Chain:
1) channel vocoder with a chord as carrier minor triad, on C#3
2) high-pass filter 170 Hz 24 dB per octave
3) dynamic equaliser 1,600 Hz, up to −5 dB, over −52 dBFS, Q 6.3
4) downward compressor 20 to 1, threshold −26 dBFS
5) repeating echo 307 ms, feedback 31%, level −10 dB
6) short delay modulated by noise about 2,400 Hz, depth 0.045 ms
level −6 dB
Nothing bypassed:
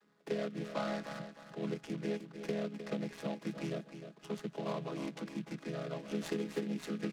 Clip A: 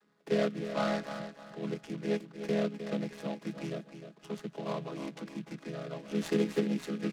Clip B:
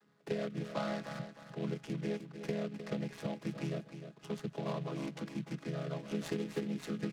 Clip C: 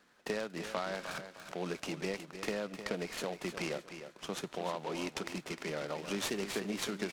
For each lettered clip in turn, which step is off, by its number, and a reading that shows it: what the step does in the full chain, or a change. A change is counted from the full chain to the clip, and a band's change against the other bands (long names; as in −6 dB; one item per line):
4, average gain reduction 2.0 dB
2, 125 Hz band +4.0 dB
1, 125 Hz band −8.5 dB